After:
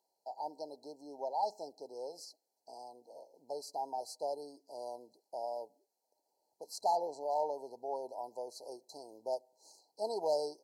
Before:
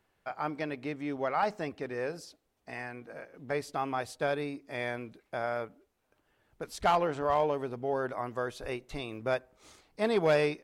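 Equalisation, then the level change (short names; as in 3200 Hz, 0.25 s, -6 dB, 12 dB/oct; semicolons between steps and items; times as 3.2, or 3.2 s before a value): HPF 680 Hz 12 dB/oct; brick-wall FIR band-stop 980–4000 Hz; bell 3200 Hz +10.5 dB 0.35 oct; -1.5 dB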